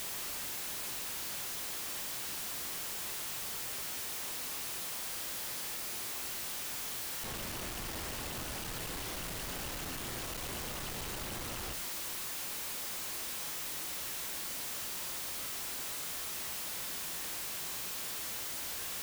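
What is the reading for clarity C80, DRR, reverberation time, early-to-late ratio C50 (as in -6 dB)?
17.5 dB, 7.5 dB, not exponential, 13.5 dB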